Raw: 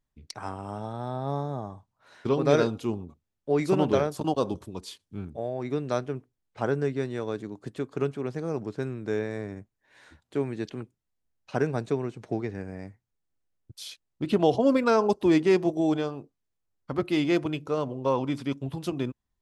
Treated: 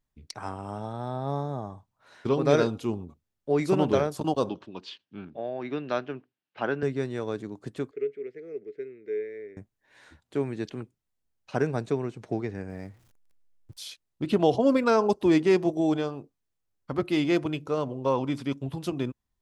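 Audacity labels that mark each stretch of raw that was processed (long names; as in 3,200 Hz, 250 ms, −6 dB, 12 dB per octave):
4.490000	6.830000	loudspeaker in its box 210–4,700 Hz, peaks and dips at 450 Hz −4 dB, 1,600 Hz +5 dB, 2,800 Hz +8 dB
7.910000	9.570000	pair of resonant band-passes 930 Hz, apart 2.3 octaves
12.700000	13.810000	converter with a step at zero of −55.5 dBFS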